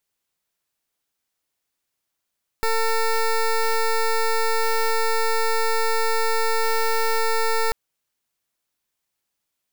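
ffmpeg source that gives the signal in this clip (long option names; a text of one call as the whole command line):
ffmpeg -f lavfi -i "aevalsrc='0.1*(2*lt(mod(450*t,1),0.14)-1)':duration=5.09:sample_rate=44100" out.wav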